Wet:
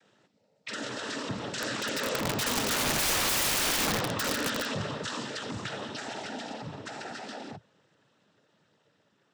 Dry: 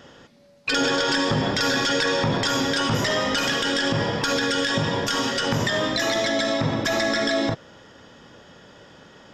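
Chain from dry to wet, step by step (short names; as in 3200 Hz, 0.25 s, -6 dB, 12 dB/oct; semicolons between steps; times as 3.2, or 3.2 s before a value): Doppler pass-by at 3.32, 7 m/s, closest 3.6 m; noise vocoder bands 12; wrapped overs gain 22 dB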